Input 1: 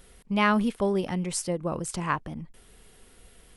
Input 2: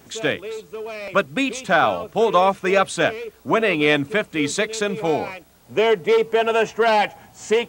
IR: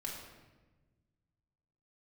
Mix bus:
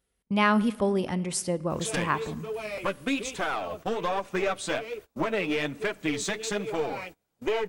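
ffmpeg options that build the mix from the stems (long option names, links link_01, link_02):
-filter_complex "[0:a]highpass=42,volume=-0.5dB,asplit=2[link_01][link_02];[link_02]volume=-14.5dB[link_03];[1:a]acompressor=threshold=-21dB:ratio=4,aeval=exprs='clip(val(0),-1,0.0708)':channel_layout=same,flanger=delay=1.8:depth=9.7:regen=18:speed=1.2:shape=triangular,adelay=1700,volume=-0.5dB,asplit=2[link_04][link_05];[link_05]volume=-21.5dB[link_06];[2:a]atrim=start_sample=2205[link_07];[link_03][link_06]amix=inputs=2:normalize=0[link_08];[link_08][link_07]afir=irnorm=-1:irlink=0[link_09];[link_01][link_04][link_09]amix=inputs=3:normalize=0,agate=range=-23dB:threshold=-42dB:ratio=16:detection=peak"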